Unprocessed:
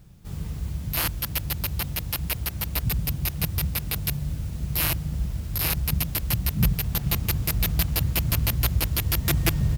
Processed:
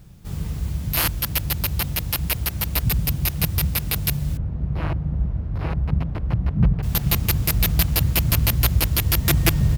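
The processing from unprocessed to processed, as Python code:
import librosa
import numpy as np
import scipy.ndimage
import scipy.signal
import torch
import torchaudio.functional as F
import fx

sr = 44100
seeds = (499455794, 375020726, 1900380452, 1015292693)

y = fx.lowpass(x, sr, hz=1100.0, slope=12, at=(4.37, 6.83))
y = y * 10.0 ** (4.5 / 20.0)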